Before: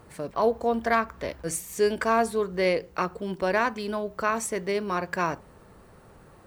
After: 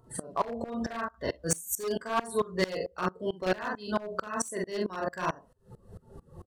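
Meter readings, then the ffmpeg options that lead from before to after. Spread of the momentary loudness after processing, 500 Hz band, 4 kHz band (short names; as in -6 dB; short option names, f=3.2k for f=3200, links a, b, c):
8 LU, -6.5 dB, -2.5 dB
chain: -filter_complex "[0:a]acompressor=mode=upward:threshold=-35dB:ratio=2.5,flanger=delay=7.5:depth=5.5:regen=66:speed=0.89:shape=sinusoidal,highshelf=f=3k:g=9,asplit=2[a][b];[b]adelay=65,lowpass=f=4.7k:p=1,volume=-17.5dB,asplit=2[c][d];[d]adelay=65,lowpass=f=4.7k:p=1,volume=0.38,asplit=2[e][f];[f]adelay=65,lowpass=f=4.7k:p=1,volume=0.38[g];[a][c][e][g]amix=inputs=4:normalize=0,aresample=32000,aresample=44100,asuperstop=centerf=2300:order=4:qfactor=4.6,highshelf=f=8.6k:g=2.5,alimiter=limit=-21.5dB:level=0:latency=1:release=192,afftdn=nr=22:nf=-41,asplit=2[h][i];[i]adelay=43,volume=-3dB[j];[h][j]amix=inputs=2:normalize=0,aeval=exprs='0.0631*(abs(mod(val(0)/0.0631+3,4)-2)-1)':c=same,aeval=exprs='val(0)*pow(10,-24*if(lt(mod(-4.5*n/s,1),2*abs(-4.5)/1000),1-mod(-4.5*n/s,1)/(2*abs(-4.5)/1000),(mod(-4.5*n/s,1)-2*abs(-4.5)/1000)/(1-2*abs(-4.5)/1000))/20)':c=same,volume=8.5dB"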